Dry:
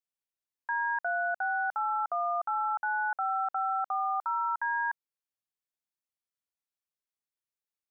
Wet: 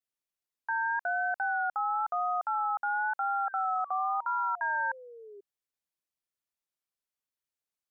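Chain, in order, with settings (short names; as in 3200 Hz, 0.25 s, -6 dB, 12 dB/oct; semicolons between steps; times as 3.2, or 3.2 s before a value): painted sound fall, 3.47–5.41, 380–1600 Hz -48 dBFS; vibrato 0.98 Hz 61 cents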